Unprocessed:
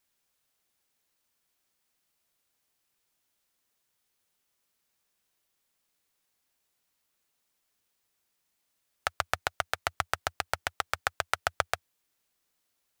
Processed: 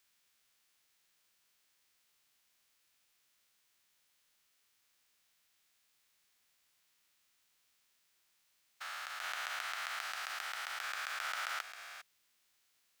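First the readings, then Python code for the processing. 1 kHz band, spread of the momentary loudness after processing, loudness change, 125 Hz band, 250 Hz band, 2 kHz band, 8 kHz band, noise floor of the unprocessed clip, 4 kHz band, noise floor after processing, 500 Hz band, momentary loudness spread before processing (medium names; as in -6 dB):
-8.5 dB, 10 LU, -6.5 dB, under -30 dB, under -20 dB, -5.0 dB, -5.5 dB, -78 dBFS, -4.0 dB, -76 dBFS, -17.5 dB, 3 LU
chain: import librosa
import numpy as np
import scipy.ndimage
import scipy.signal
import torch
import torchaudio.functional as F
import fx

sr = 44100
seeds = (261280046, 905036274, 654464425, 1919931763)

p1 = fx.spec_steps(x, sr, hold_ms=400)
p2 = scipy.signal.sosfilt(scipy.signal.butter(2, 1400.0, 'highpass', fs=sr, output='sos'), p1)
p3 = fx.sample_hold(p2, sr, seeds[0], rate_hz=19000.0, jitter_pct=0)
p4 = p2 + F.gain(torch.from_numpy(p3), -6.5).numpy()
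y = F.gain(torch.from_numpy(p4), 4.0).numpy()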